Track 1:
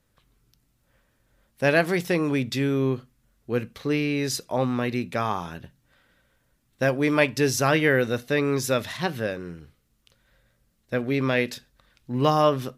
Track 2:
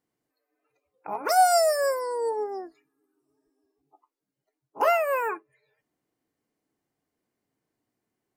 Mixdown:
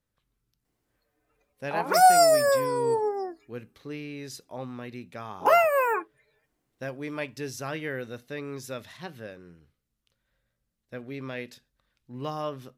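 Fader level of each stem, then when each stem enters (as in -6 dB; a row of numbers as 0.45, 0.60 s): -13.0, +2.5 dB; 0.00, 0.65 s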